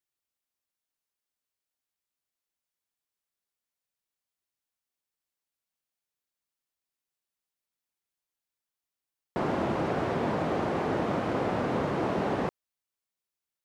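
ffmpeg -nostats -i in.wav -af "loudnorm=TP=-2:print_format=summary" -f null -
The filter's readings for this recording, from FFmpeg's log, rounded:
Input Integrated:    -29.8 LUFS
Input True Peak:     -16.9 dBTP
Input LRA:             2.0 LU
Input Threshold:     -39.8 LUFS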